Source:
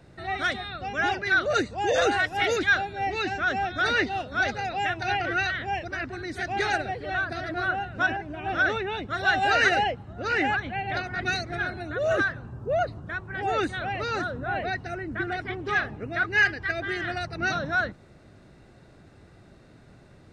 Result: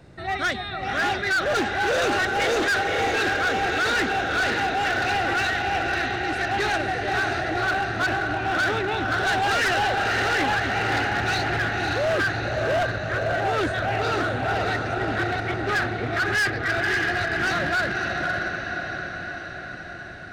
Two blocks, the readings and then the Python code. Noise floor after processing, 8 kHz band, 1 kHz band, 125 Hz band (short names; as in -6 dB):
-35 dBFS, +6.5 dB, +3.5 dB, +6.0 dB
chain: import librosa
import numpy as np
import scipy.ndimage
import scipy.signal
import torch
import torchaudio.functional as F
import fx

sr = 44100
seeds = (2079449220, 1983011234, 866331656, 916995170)

y = fx.echo_diffused(x, sr, ms=561, feedback_pct=63, wet_db=-4)
y = np.clip(10.0 ** (23.0 / 20.0) * y, -1.0, 1.0) / 10.0 ** (23.0 / 20.0)
y = fx.doppler_dist(y, sr, depth_ms=0.16)
y = F.gain(torch.from_numpy(y), 3.5).numpy()